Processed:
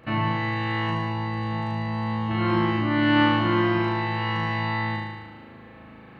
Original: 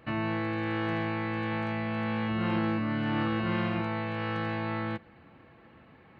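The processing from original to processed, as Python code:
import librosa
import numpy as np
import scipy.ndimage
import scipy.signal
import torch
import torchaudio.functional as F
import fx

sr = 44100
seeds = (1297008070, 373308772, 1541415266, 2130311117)

y = fx.peak_eq(x, sr, hz=2300.0, db=-9.5, octaves=1.7, at=(0.91, 2.31))
y = fx.room_flutter(y, sr, wall_m=6.4, rt60_s=1.3)
y = F.gain(torch.from_numpy(y), 4.0).numpy()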